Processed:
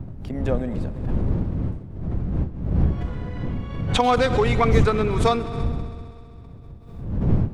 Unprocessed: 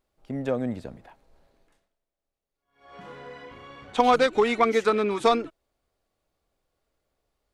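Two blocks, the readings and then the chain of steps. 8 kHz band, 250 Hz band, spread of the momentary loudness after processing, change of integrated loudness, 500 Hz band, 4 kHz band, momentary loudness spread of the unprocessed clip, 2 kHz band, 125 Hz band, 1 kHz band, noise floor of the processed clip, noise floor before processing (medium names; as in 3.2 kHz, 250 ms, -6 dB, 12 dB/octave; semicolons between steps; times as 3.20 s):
+4.0 dB, +6.0 dB, 17 LU, 0.0 dB, +1.0 dB, +3.0 dB, 22 LU, +1.0 dB, +20.5 dB, +0.5 dB, -41 dBFS, under -85 dBFS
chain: wind noise 130 Hz -25 dBFS; multi-head delay 65 ms, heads all three, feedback 71%, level -23 dB; swell ahead of each attack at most 65 dB/s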